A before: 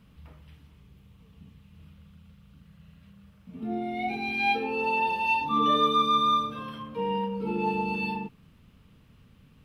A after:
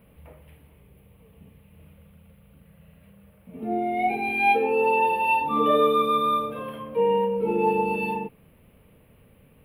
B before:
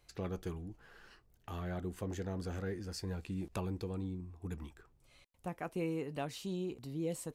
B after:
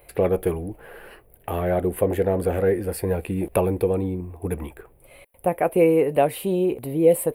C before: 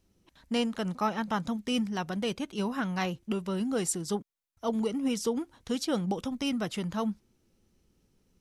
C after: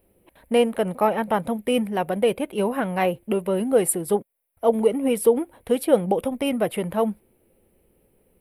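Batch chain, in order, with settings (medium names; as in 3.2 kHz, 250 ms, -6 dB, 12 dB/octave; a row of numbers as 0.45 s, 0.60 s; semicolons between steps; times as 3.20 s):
FFT filter 180 Hz 0 dB, 280 Hz +2 dB, 540 Hz +13 dB, 1.3 kHz -1 dB, 2.3 kHz +5 dB, 6.3 kHz -19 dB, 10 kHz +12 dB; normalise loudness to -23 LUFS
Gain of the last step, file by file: 0.0 dB, +12.5 dB, +3.5 dB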